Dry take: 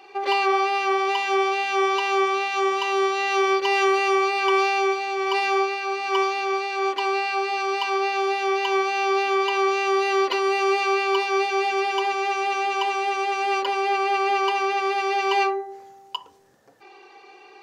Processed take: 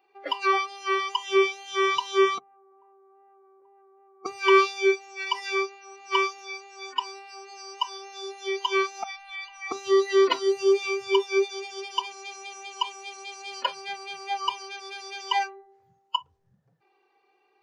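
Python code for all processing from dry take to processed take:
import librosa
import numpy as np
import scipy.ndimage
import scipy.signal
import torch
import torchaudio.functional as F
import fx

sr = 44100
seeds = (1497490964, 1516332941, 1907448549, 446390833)

y = fx.chain(x, sr, fx.lowpass(hz=1100.0, slope=24),
    fx.level_steps(step_db=19), at=(2.38, 4.26))
y = fx.chain(y, sr, fx.cheby_ripple_highpass(hz=490.0, ripple_db=6),
    fx.transient(attack_db=-7, sustain_db=10), at=(9.03, 9.72))
y = fx.lowpass(y, sr, hz=3500.0, slope=6)
y = fx.hum_notches(y, sr, base_hz=50, count=3)
y = fx.noise_reduce_blind(y, sr, reduce_db=25)
y = y * 10.0 ** (5.5 / 20.0)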